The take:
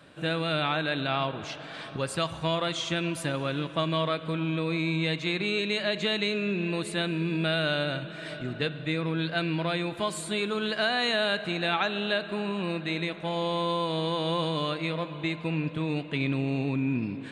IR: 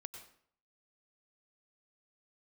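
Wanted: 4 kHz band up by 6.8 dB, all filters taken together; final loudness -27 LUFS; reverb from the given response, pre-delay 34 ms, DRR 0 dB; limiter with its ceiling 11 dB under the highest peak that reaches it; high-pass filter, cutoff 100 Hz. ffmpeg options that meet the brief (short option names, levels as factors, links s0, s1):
-filter_complex "[0:a]highpass=100,equalizer=f=4000:t=o:g=8,alimiter=limit=0.0841:level=0:latency=1,asplit=2[s0][s1];[1:a]atrim=start_sample=2205,adelay=34[s2];[s1][s2]afir=irnorm=-1:irlink=0,volume=1.68[s3];[s0][s3]amix=inputs=2:normalize=0,volume=1.19"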